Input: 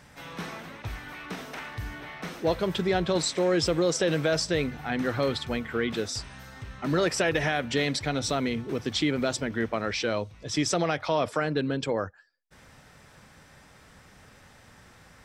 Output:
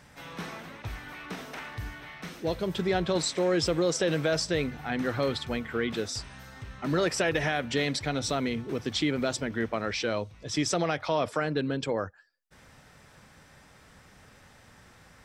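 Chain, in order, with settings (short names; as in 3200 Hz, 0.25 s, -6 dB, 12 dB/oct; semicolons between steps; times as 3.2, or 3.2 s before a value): 1.89–2.76 bell 300 Hz -> 1800 Hz -5.5 dB 2.3 oct; gain -1.5 dB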